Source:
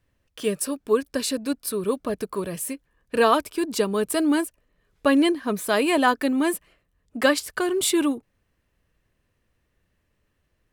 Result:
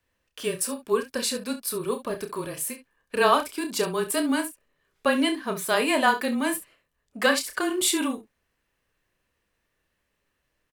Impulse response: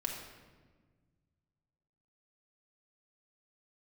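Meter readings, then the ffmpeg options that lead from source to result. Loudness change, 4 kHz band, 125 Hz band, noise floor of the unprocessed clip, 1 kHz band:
−2.0 dB, +0.5 dB, −2.5 dB, −72 dBFS, −0.5 dB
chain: -filter_complex "[0:a]lowshelf=frequency=360:gain=-10,afreqshift=-21,asplit=2[link_01][link_02];[link_02]aecho=0:1:30|68:0.422|0.211[link_03];[link_01][link_03]amix=inputs=2:normalize=0"

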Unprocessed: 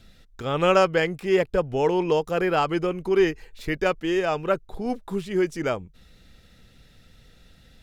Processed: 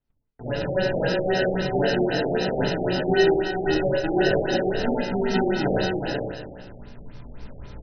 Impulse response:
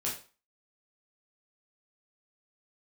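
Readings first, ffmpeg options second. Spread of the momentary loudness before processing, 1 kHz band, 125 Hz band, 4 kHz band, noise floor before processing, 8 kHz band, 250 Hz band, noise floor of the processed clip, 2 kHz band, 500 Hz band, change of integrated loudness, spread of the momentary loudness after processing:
11 LU, −1.5 dB, +4.0 dB, +4.0 dB, −55 dBFS, can't be measured, +2.0 dB, −54 dBFS, +2.0 dB, +0.5 dB, +0.5 dB, 10 LU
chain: -filter_complex "[0:a]adynamicsmooth=sensitivity=5.5:basefreq=2400,alimiter=limit=-18.5dB:level=0:latency=1,asplit=2[link_01][link_02];[link_02]aecho=0:1:182|364|546|728|910:0.316|0.149|0.0699|0.0328|0.0154[link_03];[link_01][link_03]amix=inputs=2:normalize=0,acrusher=samples=39:mix=1:aa=0.000001,highshelf=frequency=5500:gain=11.5,asplit=2[link_04][link_05];[link_05]adelay=16,volume=-6dB[link_06];[link_04][link_06]amix=inputs=2:normalize=0,aecho=1:1:67|69|363|482:0.422|0.531|0.473|0.596,dynaudnorm=framelen=540:gausssize=3:maxgain=14dB,agate=range=-25dB:threshold=-42dB:ratio=16:detection=peak,asplit=2[link_07][link_08];[link_08]equalizer=frequency=280:width=5.6:gain=6[link_09];[1:a]atrim=start_sample=2205,adelay=7[link_10];[link_09][link_10]afir=irnorm=-1:irlink=0,volume=-5dB[link_11];[link_07][link_11]amix=inputs=2:normalize=0,afftfilt=real='re*lt(b*sr/1024,790*pow(6200/790,0.5+0.5*sin(2*PI*3.8*pts/sr)))':imag='im*lt(b*sr/1024,790*pow(6200/790,0.5+0.5*sin(2*PI*3.8*pts/sr)))':win_size=1024:overlap=0.75,volume=-6dB"

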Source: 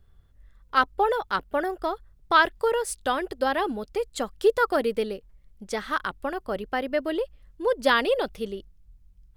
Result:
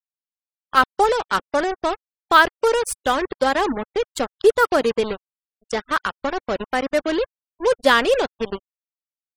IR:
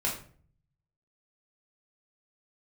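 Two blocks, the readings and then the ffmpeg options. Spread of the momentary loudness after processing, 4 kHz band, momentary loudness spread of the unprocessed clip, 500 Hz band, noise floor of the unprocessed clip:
11 LU, +6.0 dB, 11 LU, +5.5 dB, −58 dBFS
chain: -af "acrusher=bits=4:mix=0:aa=0.5,afftfilt=real='re*gte(hypot(re,im),0.0112)':imag='im*gte(hypot(re,im),0.0112)':win_size=1024:overlap=0.75,volume=5.5dB"

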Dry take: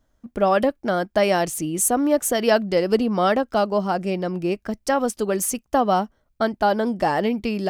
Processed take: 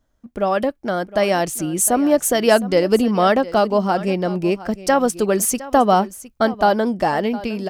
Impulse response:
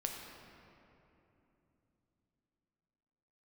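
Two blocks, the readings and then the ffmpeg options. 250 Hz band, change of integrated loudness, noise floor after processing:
+3.5 dB, +3.0 dB, −63 dBFS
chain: -af "dynaudnorm=framelen=560:gausssize=5:maxgain=11.5dB,aecho=1:1:711:0.141,volume=-1dB"

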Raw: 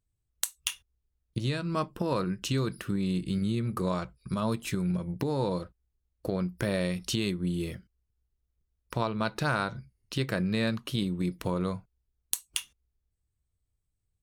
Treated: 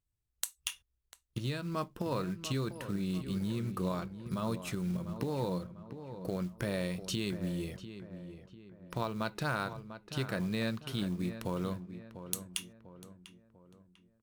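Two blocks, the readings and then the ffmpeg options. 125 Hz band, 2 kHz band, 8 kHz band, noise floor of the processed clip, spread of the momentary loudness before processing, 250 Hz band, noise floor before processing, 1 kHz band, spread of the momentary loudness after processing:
−5.0 dB, −5.0 dB, −5.5 dB, −81 dBFS, 6 LU, −5.0 dB, −81 dBFS, −5.0 dB, 12 LU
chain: -filter_complex "[0:a]acrusher=bits=6:mode=log:mix=0:aa=0.000001,asplit=2[link_01][link_02];[link_02]adelay=696,lowpass=frequency=2200:poles=1,volume=-11dB,asplit=2[link_03][link_04];[link_04]adelay=696,lowpass=frequency=2200:poles=1,volume=0.45,asplit=2[link_05][link_06];[link_06]adelay=696,lowpass=frequency=2200:poles=1,volume=0.45,asplit=2[link_07][link_08];[link_08]adelay=696,lowpass=frequency=2200:poles=1,volume=0.45,asplit=2[link_09][link_10];[link_10]adelay=696,lowpass=frequency=2200:poles=1,volume=0.45[link_11];[link_03][link_05][link_07][link_09][link_11]amix=inputs=5:normalize=0[link_12];[link_01][link_12]amix=inputs=2:normalize=0,volume=-5.5dB"

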